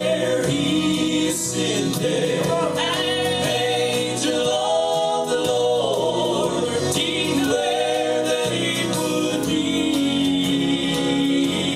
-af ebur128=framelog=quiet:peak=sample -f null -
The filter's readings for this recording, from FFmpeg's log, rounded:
Integrated loudness:
  I:         -20.5 LUFS
  Threshold: -30.5 LUFS
Loudness range:
  LRA:         0.4 LU
  Threshold: -40.5 LUFS
  LRA low:   -20.7 LUFS
  LRA high:  -20.4 LUFS
Sample peak:
  Peak:       -7.3 dBFS